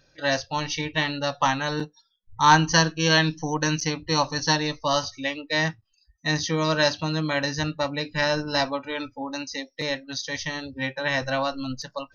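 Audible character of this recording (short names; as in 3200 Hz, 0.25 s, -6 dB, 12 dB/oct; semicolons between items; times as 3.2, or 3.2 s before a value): noise floor -69 dBFS; spectral tilt -4.0 dB/oct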